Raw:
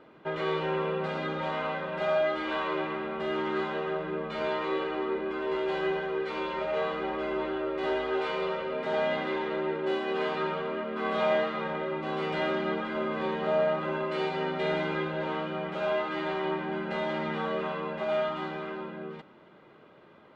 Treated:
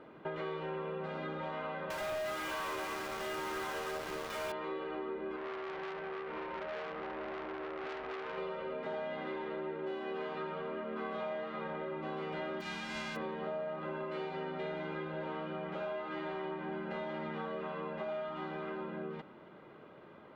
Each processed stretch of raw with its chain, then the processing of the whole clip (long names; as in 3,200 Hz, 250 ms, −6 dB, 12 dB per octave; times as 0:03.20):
0:01.90–0:04.52: high-pass filter 910 Hz 6 dB per octave + log-companded quantiser 2 bits
0:05.36–0:08.38: variable-slope delta modulation 32 kbit/s + low-pass filter 2,500 Hz 24 dB per octave + saturating transformer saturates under 2,300 Hz
0:12.60–0:13.15: spectral envelope flattened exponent 0.1 + high-frequency loss of the air 120 metres
whole clip: high-shelf EQ 3,500 Hz −8.5 dB; downward compressor, threshold −38 dBFS; level +1 dB